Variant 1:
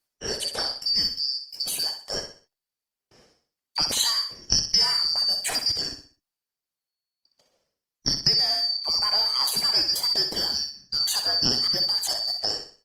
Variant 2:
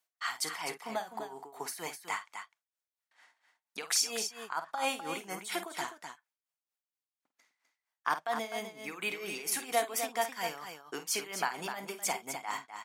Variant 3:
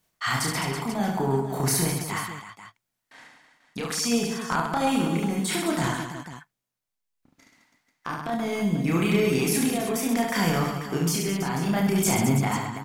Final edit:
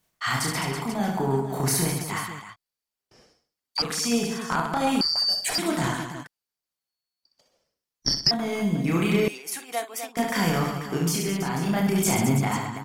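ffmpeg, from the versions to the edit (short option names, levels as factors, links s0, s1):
-filter_complex "[0:a]asplit=3[s0][s1][s2];[2:a]asplit=5[s3][s4][s5][s6][s7];[s3]atrim=end=2.562[s8];[s0]atrim=start=2.558:end=3.822[s9];[s4]atrim=start=3.818:end=5.012[s10];[s1]atrim=start=5.008:end=5.582[s11];[s5]atrim=start=5.578:end=6.272[s12];[s2]atrim=start=6.268:end=8.312[s13];[s6]atrim=start=8.308:end=9.282[s14];[1:a]atrim=start=9.278:end=10.172[s15];[s7]atrim=start=10.168[s16];[s8][s9]acrossfade=d=0.004:c1=hsin:c2=hsin[s17];[s17][s10]acrossfade=d=0.004:c1=hsin:c2=hsin[s18];[s18][s11]acrossfade=d=0.004:c1=hsin:c2=hsin[s19];[s19][s12]acrossfade=d=0.004:c1=hsin:c2=hsin[s20];[s20][s13]acrossfade=d=0.004:c1=hsin:c2=hsin[s21];[s21][s14]acrossfade=d=0.004:c1=hsin:c2=hsin[s22];[s22][s15]acrossfade=d=0.004:c1=hsin:c2=hsin[s23];[s23][s16]acrossfade=d=0.004:c1=hsin:c2=hsin"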